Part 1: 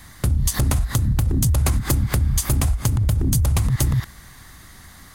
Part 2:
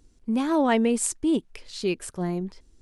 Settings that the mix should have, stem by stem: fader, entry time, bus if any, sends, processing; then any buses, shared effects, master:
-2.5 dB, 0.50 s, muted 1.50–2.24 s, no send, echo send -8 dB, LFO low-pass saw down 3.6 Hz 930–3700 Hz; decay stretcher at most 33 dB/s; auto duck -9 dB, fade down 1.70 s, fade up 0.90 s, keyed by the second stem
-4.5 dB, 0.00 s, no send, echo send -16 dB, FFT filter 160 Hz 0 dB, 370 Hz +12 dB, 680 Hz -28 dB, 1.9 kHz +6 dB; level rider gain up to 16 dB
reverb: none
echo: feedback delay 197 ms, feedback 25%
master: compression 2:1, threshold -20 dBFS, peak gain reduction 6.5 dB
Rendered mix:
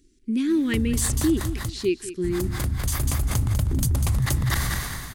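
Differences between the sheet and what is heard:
stem 1: missing LFO low-pass saw down 3.6 Hz 930–3700 Hz; stem 2: missing level rider gain up to 16 dB

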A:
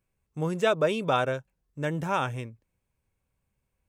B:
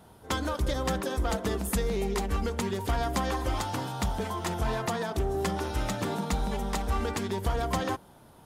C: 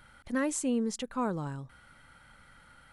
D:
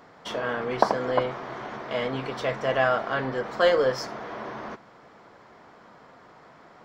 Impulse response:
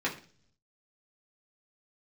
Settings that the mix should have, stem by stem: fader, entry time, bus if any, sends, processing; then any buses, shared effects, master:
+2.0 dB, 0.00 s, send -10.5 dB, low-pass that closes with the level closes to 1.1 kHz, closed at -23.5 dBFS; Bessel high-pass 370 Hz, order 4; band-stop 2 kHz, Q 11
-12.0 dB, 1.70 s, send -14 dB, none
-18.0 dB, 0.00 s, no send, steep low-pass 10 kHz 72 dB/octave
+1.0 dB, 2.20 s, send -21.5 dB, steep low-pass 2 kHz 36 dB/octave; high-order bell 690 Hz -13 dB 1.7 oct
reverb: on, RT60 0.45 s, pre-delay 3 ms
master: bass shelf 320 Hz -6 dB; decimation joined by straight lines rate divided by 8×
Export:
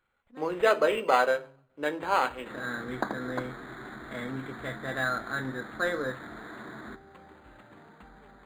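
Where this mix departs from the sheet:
stem A: missing low-pass that closes with the level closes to 1.1 kHz, closed at -23.5 dBFS; stem B -12.0 dB -> -21.5 dB

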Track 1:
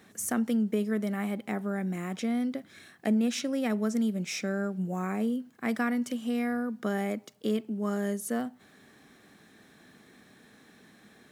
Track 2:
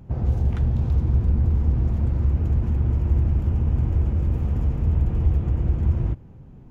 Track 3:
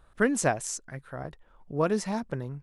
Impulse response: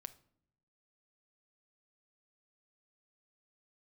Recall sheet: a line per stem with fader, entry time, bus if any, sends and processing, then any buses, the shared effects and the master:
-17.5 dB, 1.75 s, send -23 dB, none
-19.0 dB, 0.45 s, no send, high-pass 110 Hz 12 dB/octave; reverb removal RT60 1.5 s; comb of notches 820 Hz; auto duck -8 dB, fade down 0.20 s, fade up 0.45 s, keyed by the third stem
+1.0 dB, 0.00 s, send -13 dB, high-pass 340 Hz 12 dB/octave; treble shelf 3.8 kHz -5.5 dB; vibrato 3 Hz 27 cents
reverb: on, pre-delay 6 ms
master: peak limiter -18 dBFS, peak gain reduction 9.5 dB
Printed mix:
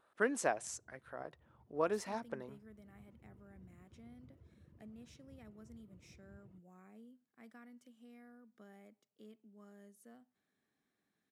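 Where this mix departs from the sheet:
stem 1 -17.5 dB -> -28.5 dB; stem 2 -19.0 dB -> -29.5 dB; stem 3 +1.0 dB -> -7.5 dB

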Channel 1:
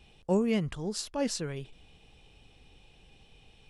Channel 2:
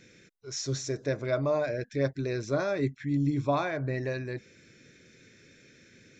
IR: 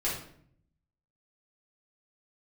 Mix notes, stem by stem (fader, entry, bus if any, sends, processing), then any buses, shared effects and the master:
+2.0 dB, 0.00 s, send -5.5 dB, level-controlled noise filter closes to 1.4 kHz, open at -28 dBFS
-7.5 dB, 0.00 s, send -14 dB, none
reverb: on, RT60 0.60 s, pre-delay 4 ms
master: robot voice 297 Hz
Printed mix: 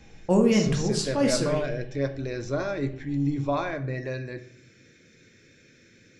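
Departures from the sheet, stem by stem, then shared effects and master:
stem 2 -7.5 dB -> -1.5 dB; master: missing robot voice 297 Hz

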